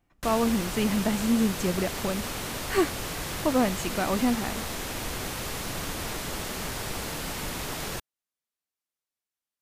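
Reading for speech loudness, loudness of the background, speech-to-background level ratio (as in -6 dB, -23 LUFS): -27.5 LUFS, -33.0 LUFS, 5.5 dB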